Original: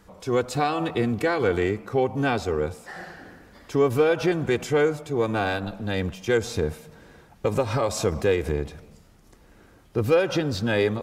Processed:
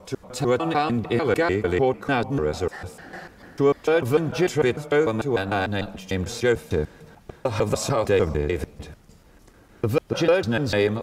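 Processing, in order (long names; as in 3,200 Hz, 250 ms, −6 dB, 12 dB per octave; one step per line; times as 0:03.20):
slices reordered back to front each 149 ms, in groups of 2
level +1.5 dB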